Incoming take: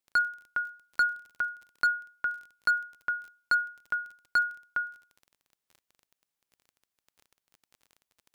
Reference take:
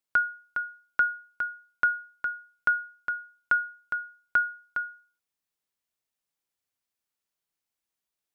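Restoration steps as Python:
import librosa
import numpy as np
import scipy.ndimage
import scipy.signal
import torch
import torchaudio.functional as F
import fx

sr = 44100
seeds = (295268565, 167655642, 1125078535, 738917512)

y = fx.fix_declip(x, sr, threshold_db=-19.5)
y = fx.fix_declick_ar(y, sr, threshold=6.5)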